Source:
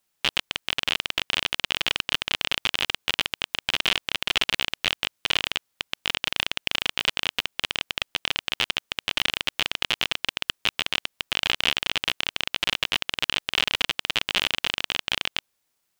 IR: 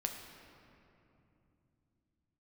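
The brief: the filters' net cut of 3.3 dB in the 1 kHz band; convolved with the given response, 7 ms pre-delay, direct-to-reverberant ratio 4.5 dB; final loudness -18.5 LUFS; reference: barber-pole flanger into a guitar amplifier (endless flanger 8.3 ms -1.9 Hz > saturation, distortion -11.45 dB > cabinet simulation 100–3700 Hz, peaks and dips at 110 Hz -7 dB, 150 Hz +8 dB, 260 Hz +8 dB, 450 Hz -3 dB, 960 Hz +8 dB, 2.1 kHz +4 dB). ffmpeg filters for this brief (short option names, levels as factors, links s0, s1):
-filter_complex "[0:a]equalizer=f=1000:t=o:g=-9,asplit=2[s0][s1];[1:a]atrim=start_sample=2205,adelay=7[s2];[s1][s2]afir=irnorm=-1:irlink=0,volume=0.531[s3];[s0][s3]amix=inputs=2:normalize=0,asplit=2[s4][s5];[s5]adelay=8.3,afreqshift=-1.9[s6];[s4][s6]amix=inputs=2:normalize=1,asoftclip=threshold=0.1,highpass=100,equalizer=f=110:t=q:w=4:g=-7,equalizer=f=150:t=q:w=4:g=8,equalizer=f=260:t=q:w=4:g=8,equalizer=f=450:t=q:w=4:g=-3,equalizer=f=960:t=q:w=4:g=8,equalizer=f=2100:t=q:w=4:g=4,lowpass=f=3700:w=0.5412,lowpass=f=3700:w=1.3066,volume=4.47"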